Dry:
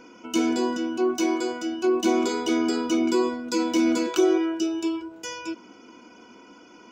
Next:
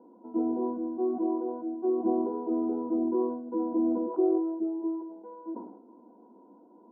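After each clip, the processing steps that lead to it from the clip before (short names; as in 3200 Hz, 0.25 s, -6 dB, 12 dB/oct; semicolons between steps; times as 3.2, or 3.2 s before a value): Chebyshev band-pass 200–950 Hz, order 4; sustainer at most 67 dB/s; gain -5 dB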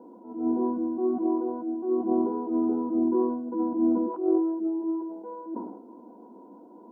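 dynamic EQ 560 Hz, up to -8 dB, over -43 dBFS, Q 1.2; attack slew limiter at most 110 dB/s; gain +7 dB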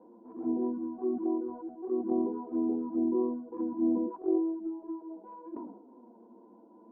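envelope flanger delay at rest 11.2 ms, full sweep at -21.5 dBFS; air absorption 190 m; gain -3.5 dB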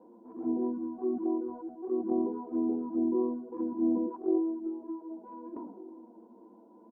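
outdoor echo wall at 260 m, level -20 dB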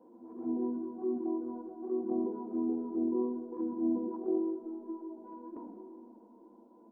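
reverse echo 0.237 s -17 dB; Schroeder reverb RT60 2.7 s, combs from 29 ms, DRR 7 dB; gain -3.5 dB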